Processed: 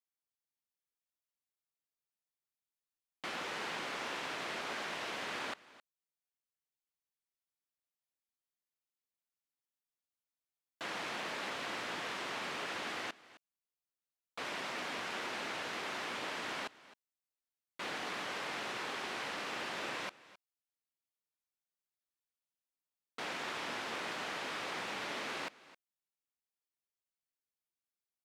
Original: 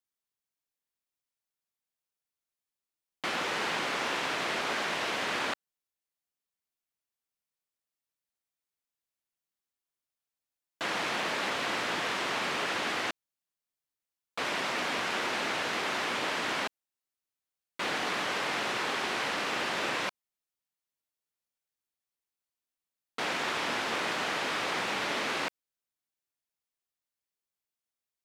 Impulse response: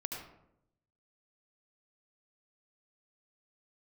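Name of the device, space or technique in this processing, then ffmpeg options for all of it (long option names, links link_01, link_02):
ducked delay: -filter_complex "[0:a]asplit=3[link_01][link_02][link_03];[link_02]adelay=263,volume=-5.5dB[link_04];[link_03]apad=whole_len=1257345[link_05];[link_04][link_05]sidechaincompress=threshold=-43dB:ratio=12:attack=16:release=1090[link_06];[link_01][link_06]amix=inputs=2:normalize=0,volume=-8.5dB"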